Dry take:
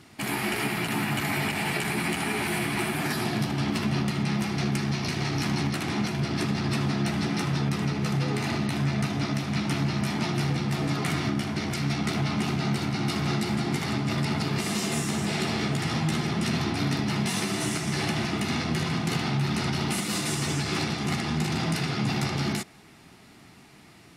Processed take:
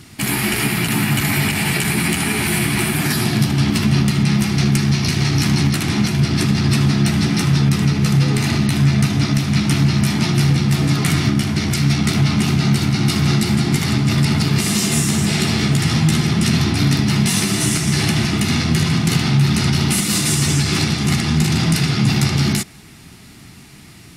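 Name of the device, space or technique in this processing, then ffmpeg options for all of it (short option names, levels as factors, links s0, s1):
smiley-face EQ: -af "lowshelf=f=160:g=8.5,equalizer=f=650:t=o:w=1.9:g=-6,highshelf=f=5300:g=7,volume=2.66"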